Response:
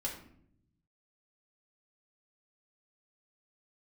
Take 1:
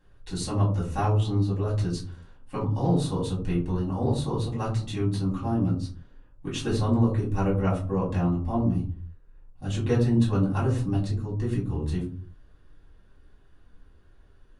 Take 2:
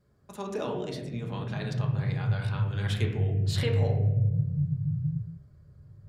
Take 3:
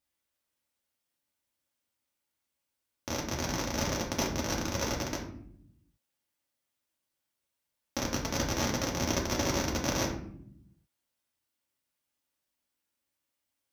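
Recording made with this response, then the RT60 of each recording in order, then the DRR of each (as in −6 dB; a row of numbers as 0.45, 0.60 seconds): 3; 0.45 s, non-exponential decay, 0.65 s; −7.5, 0.0, −3.0 decibels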